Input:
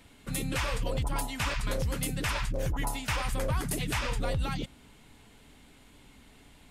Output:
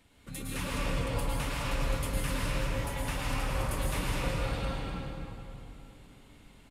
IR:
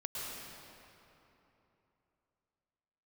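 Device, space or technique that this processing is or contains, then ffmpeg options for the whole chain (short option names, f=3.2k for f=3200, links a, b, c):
cave: -filter_complex "[0:a]aecho=1:1:247:0.355[a];[1:a]atrim=start_sample=2205[b];[a][b]afir=irnorm=-1:irlink=0,volume=-4dB"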